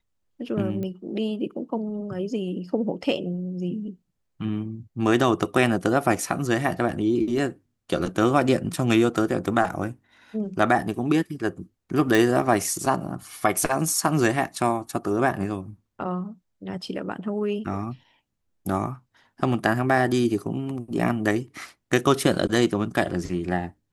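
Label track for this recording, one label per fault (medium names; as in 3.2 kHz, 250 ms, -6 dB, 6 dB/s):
0.830000	0.830000	pop -21 dBFS
12.150000	12.150000	pop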